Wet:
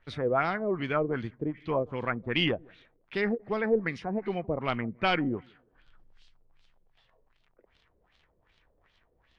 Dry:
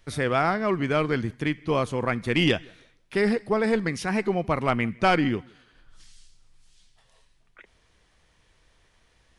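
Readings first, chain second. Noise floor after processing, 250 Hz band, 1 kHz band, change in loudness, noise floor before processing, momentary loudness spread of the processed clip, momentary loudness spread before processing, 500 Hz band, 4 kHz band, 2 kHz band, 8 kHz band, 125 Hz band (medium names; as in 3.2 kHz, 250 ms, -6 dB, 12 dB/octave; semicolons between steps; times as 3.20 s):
-70 dBFS, -6.0 dB, -5.5 dB, -5.0 dB, -64 dBFS, 6 LU, 5 LU, -4.0 dB, -3.0 dB, -5.0 dB, under -20 dB, -7.0 dB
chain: crackle 63 per s -43 dBFS; LFO low-pass sine 2.6 Hz 460–3900 Hz; endings held to a fixed fall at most 430 dB/s; trim -7 dB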